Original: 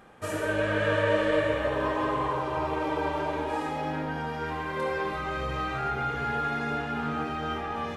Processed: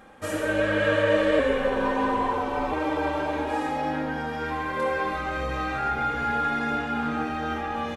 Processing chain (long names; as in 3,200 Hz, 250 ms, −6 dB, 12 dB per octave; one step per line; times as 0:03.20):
comb filter 3.7 ms, depth 46%
0:01.39–0:02.72: frequency shifter −45 Hz
level +2 dB